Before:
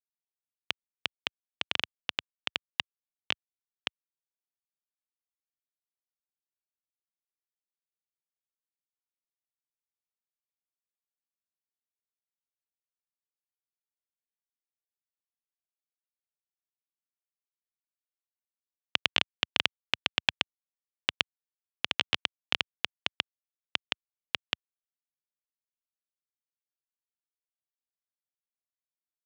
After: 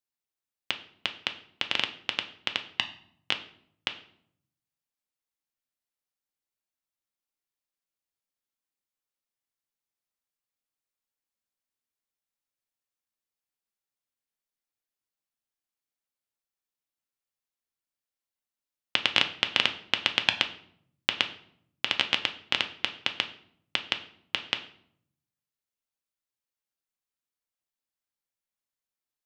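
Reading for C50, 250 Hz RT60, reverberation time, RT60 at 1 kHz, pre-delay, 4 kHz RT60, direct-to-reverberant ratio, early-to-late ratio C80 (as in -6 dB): 13.0 dB, 0.95 s, 0.65 s, 0.60 s, 4 ms, 0.45 s, 6.0 dB, 16.5 dB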